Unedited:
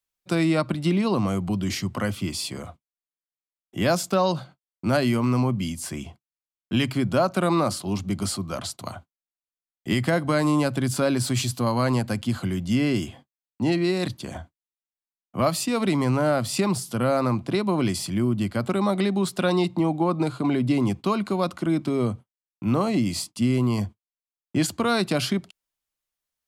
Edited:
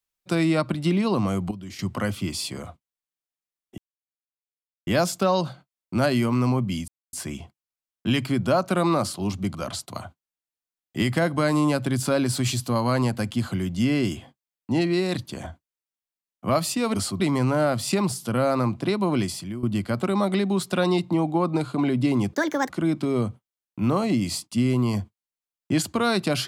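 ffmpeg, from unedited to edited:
-filter_complex "[0:a]asplit=11[s0][s1][s2][s3][s4][s5][s6][s7][s8][s9][s10];[s0]atrim=end=1.512[s11];[s1]atrim=start=1.508:end=1.792,asetpts=PTS-STARTPTS,volume=0.266[s12];[s2]atrim=start=1.788:end=3.78,asetpts=PTS-STARTPTS,afade=t=out:st=1.988:d=0.004:c=hsin,apad=pad_dur=1.09[s13];[s3]atrim=start=3.78:end=5.79,asetpts=PTS-STARTPTS,afade=t=in:d=0.004:c=hsin,afade=t=out:st=2.006:d=0.004:c=hsin,apad=pad_dur=0.25[s14];[s4]atrim=start=5.79:end=8.212,asetpts=PTS-STARTPTS,afade=t=in:d=0.004:c=hsin[s15];[s5]atrim=start=8.458:end=15.862[s16];[s6]atrim=start=8.208:end=8.462[s17];[s7]atrim=start=15.858:end=18.29,asetpts=PTS-STARTPTS,afade=t=out:st=1.982:d=0.45:silence=0.199526[s18];[s8]atrim=start=18.29:end=20.994,asetpts=PTS-STARTPTS,afade=t=in:d=0.004:c=hsin:silence=0.199526[s19];[s9]atrim=start=20.99:end=21.54,asetpts=PTS-STARTPTS,asetrate=66150,aresample=44100[s20];[s10]atrim=start=21.536[s21];[s11][s12]acrossfade=d=0.004:c1=hsin:c2=hsin[s22];[s13][s14][s15]concat=n=3:v=0:a=1[s23];[s22][s23]acrossfade=d=0.004:c1=hsin:c2=hsin[s24];[s24][s16]acrossfade=d=0.004:c1=hsin:c2=hsin[s25];[s25][s17]acrossfade=d=0.004:c1=hsin:c2=hsin[s26];[s18][s19]concat=n=2:v=0:a=1[s27];[s26][s27]acrossfade=d=0.004:c1=hsin:c2=hsin[s28];[s28][s20]acrossfade=d=0.004:c1=hsin:c2=hsin[s29];[s29][s21]acrossfade=d=0.004:c1=hsin:c2=hsin"

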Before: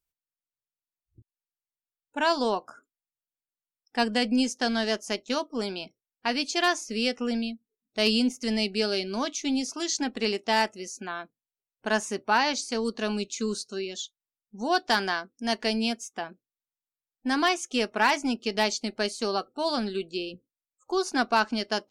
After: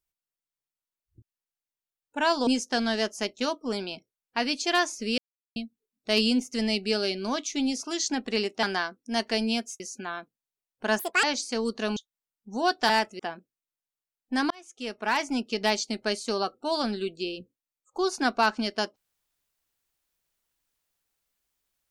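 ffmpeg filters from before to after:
-filter_complex "[0:a]asplit=12[s0][s1][s2][s3][s4][s5][s6][s7][s8][s9][s10][s11];[s0]atrim=end=2.472[s12];[s1]atrim=start=4.358:end=7.07,asetpts=PTS-STARTPTS,afade=t=out:st=2.708:d=0.004:c=hsin[s13];[s2]atrim=start=7.07:end=7.45,asetpts=PTS-STARTPTS,volume=0[s14];[s3]atrim=start=7.45:end=10.522,asetpts=PTS-STARTPTS,afade=t=in:d=0.004:c=hsin[s15];[s4]atrim=start=14.958:end=16.132[s16];[s5]atrim=start=10.818:end=12.014[s17];[s6]atrim=start=12.01:end=12.43,asetpts=PTS-STARTPTS,asetrate=75852,aresample=44100[s18];[s7]atrim=start=12.426:end=13.162[s19];[s8]atrim=start=14.028:end=14.962[s20];[s9]atrim=start=10.518:end=10.822[s21];[s10]atrim=start=16.128:end=17.44,asetpts=PTS-STARTPTS,afade=t=out:st=1.308:d=0.004:c=hsin[s22];[s11]atrim=start=17.44,asetpts=PTS-STARTPTS,afade=t=in:d=0.94[s23];[s13][s14][s15]concat=n=3:v=0:a=1[s24];[s12][s24]acrossfade=d=0.004:c1=hsin:c2=hsin[s25];[s25][s16]acrossfade=d=0.004:c1=hsin:c2=hsin[s26];[s26][s17]acrossfade=d=0.004:c1=hsin:c2=hsin[s27];[s27][s18]acrossfade=d=0.004:c1=hsin:c2=hsin[s28];[s28][s19]acrossfade=d=0.004:c1=hsin:c2=hsin[s29];[s29][s20]acrossfade=d=0.004:c1=hsin:c2=hsin[s30];[s30][s21]acrossfade=d=0.004:c1=hsin:c2=hsin[s31];[s22][s23]concat=n=2:v=0:a=1[s32];[s31][s32]acrossfade=d=0.004:c1=hsin:c2=hsin"

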